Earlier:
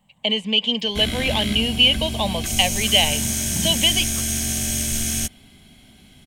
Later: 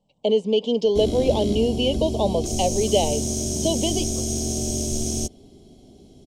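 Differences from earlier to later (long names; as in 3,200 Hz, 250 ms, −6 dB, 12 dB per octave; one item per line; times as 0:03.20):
second sound −7.5 dB
master: add drawn EQ curve 220 Hz 0 dB, 400 Hz +13 dB, 1,000 Hz −5 dB, 1,700 Hz −26 dB, 5,600 Hz 0 dB, 14,000 Hz −17 dB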